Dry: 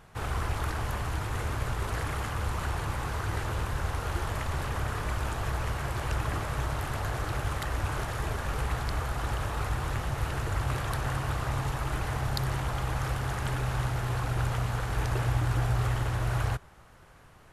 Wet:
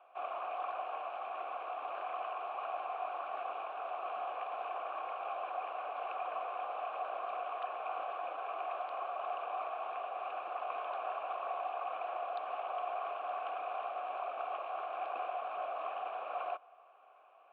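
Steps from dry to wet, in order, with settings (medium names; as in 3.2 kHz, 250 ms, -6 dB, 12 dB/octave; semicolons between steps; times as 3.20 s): mistuned SSB -110 Hz 530–3500 Hz; vowel filter a; trim +6 dB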